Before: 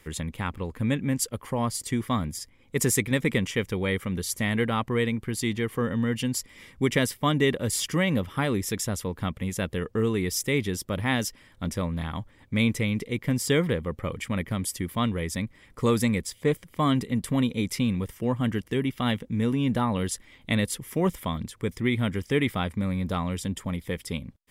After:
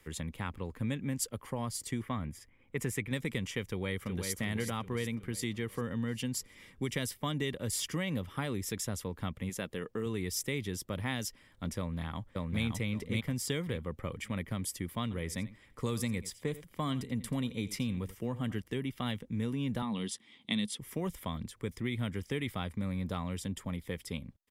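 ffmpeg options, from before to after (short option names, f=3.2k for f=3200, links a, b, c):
-filter_complex "[0:a]asettb=1/sr,asplit=3[a][b][c];[a]atrim=end=2.024[d];[b]atrim=start=2.02:end=3.11,asetpts=PTS-STARTPTS,afade=t=in:d=0.004:c=qsin,afade=t=out:st=1.086:d=0.004:c=qsin,highshelf=f=3.3k:t=q:w=1.5:g=-9[e];[c]atrim=start=3.106[f];[d][e]acrossfade=d=0.004:c1=hsin:c2=qsin[g];[g][f]acrossfade=d=0.004:c1=qsin:c2=hsin,asplit=2[h][i];[i]afade=t=in:st=3.64:d=0.01,afade=t=out:st=4.34:d=0.01,aecho=0:1:370|740|1110|1480|1850|2220|2590:0.421697|0.231933|0.127563|0.0701598|0.0385879|0.0212233|0.0116728[j];[h][j]amix=inputs=2:normalize=0,asettb=1/sr,asplit=3[k][l][m];[k]atrim=end=9.494[n];[l]atrim=start=9.49:end=10.06,asetpts=PTS-STARTPTS,afade=t=in:d=0.004:c=qsin,afade=t=out:st=0.566:d=0.004:c=qsin,equalizer=f=78:w=1.2:g=-12.5[o];[m]atrim=start=10.056[p];[n][o]acrossfade=d=0.004:c1=hsin:c2=qsin[q];[q][p]acrossfade=d=0.004:c1=qsin:c2=hsin,asplit=2[r][s];[s]afade=t=in:st=11.78:d=0.01,afade=t=out:st=12.63:d=0.01,aecho=0:1:570|1140|1710:0.944061|0.188812|0.0377624[t];[r][t]amix=inputs=2:normalize=0,asettb=1/sr,asplit=3[u][v][w];[u]atrim=end=15.024[x];[v]atrim=start=15.02:end=18.62,asetpts=PTS-STARTPTS,afade=t=in:d=0.004:c=qsin,afade=t=out:st=3.596:d=0.004:c=qsin,aecho=1:1:85:0.133,atrim=end_sample=158760[y];[w]atrim=start=18.616[z];[x][y]acrossfade=d=0.004:c1=hsin:c2=qsin[aa];[aa][z]acrossfade=d=0.004:c1=qsin:c2=hsin,asettb=1/sr,asplit=3[ab][ac][ad];[ab]atrim=end=19.824[ae];[ac]atrim=start=19.82:end=20.79,asetpts=PTS-STARTPTS,afade=t=in:d=0.004:c=qsin,afade=t=out:st=0.966:d=0.004:c=qsin,highpass=210,equalizer=f=210:t=q:w=4:g=10,equalizer=f=570:t=q:w=4:g=-9,equalizer=f=1.5k:t=q:w=4:g=-8,equalizer=f=3.4k:t=q:w=4:g=8,equalizer=f=6.9k:t=q:w=4:g=-4,lowpass=f=9.8k:w=0.5412,lowpass=f=9.8k:w=1.3066[af];[ad]atrim=start=20.786[ag];[ae][af]acrossfade=d=0.004:c1=hsin:c2=qsin[ah];[ah][ag]acrossfade=d=0.004:c1=qsin:c2=hsin,acrossover=split=130|3000[ai][aj][ak];[aj]acompressor=threshold=-26dB:ratio=6[al];[ai][al][ak]amix=inputs=3:normalize=0,volume=-6.5dB"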